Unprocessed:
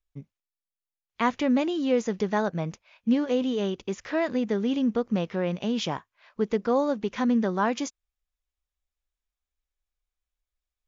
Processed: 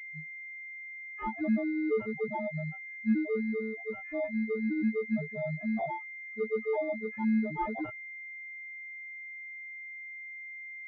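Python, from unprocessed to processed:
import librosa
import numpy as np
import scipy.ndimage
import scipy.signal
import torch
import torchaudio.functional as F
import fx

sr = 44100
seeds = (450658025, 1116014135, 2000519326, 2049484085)

y = fx.freq_snap(x, sr, grid_st=6)
y = fx.spec_topn(y, sr, count=2)
y = fx.pwm(y, sr, carrier_hz=2100.0)
y = F.gain(torch.from_numpy(y), -3.0).numpy()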